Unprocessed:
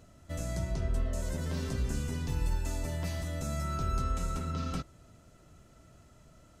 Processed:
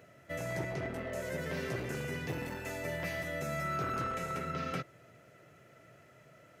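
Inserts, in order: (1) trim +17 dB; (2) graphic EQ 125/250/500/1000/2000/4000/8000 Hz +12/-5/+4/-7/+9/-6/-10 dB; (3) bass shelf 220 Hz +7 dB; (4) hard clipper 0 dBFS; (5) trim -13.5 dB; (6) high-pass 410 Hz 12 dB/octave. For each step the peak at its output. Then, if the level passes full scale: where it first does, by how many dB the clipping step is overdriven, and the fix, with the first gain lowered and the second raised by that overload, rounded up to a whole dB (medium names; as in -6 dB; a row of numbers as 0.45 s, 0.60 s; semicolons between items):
-3.0 dBFS, +0.5 dBFS, +6.5 dBFS, 0.0 dBFS, -13.5 dBFS, -23.5 dBFS; step 2, 6.5 dB; step 1 +10 dB, step 5 -6.5 dB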